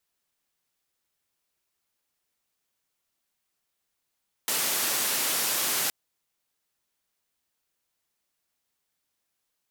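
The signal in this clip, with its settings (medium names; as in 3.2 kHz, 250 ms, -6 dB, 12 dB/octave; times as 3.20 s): noise band 200–16000 Hz, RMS -27 dBFS 1.42 s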